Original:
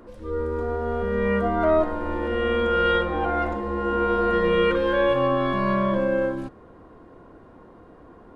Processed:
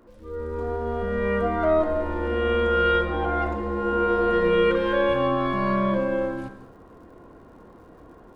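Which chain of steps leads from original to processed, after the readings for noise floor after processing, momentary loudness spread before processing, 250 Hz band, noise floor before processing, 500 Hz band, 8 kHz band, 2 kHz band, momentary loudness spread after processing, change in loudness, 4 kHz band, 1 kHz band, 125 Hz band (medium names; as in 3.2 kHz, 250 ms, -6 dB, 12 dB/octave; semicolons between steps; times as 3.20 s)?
-49 dBFS, 7 LU, -1.0 dB, -49 dBFS, -0.5 dB, no reading, -0.5 dB, 9 LU, -0.5 dB, -1.5 dB, -0.5 dB, -0.5 dB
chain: level rider gain up to 7 dB; crackle 110 per s -46 dBFS; gated-style reverb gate 250 ms flat, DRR 9 dB; trim -7.5 dB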